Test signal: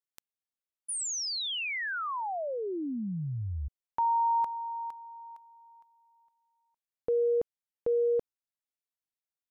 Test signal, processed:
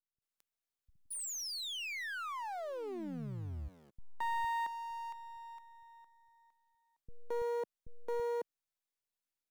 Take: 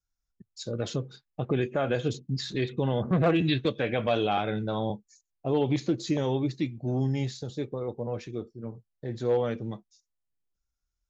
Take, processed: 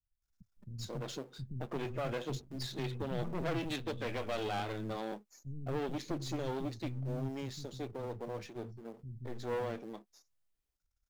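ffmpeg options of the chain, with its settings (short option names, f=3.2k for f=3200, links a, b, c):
-filter_complex "[0:a]aeval=exprs='if(lt(val(0),0),0.251*val(0),val(0))':c=same,asplit=2[a][b];[b]acrusher=bits=5:mode=log:mix=0:aa=0.000001,volume=-6.5dB[c];[a][c]amix=inputs=2:normalize=0,aeval=exprs='(tanh(63.1*val(0)+0.8)-tanh(0.8))/63.1':c=same,acrossover=split=200[d][e];[e]adelay=220[f];[d][f]amix=inputs=2:normalize=0,volume=4.5dB"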